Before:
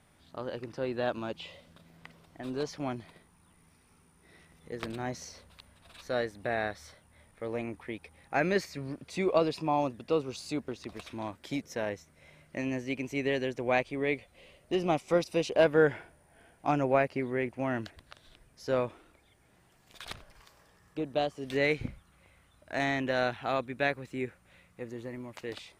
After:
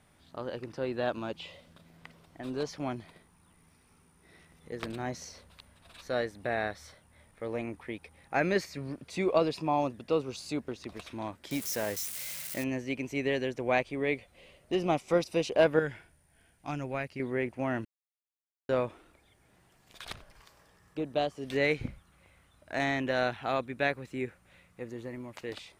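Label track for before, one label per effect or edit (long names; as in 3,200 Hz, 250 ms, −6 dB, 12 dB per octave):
11.510000	12.640000	spike at every zero crossing of −28.5 dBFS
15.790000	17.200000	parametric band 600 Hz −11.5 dB 3 octaves
17.850000	18.690000	silence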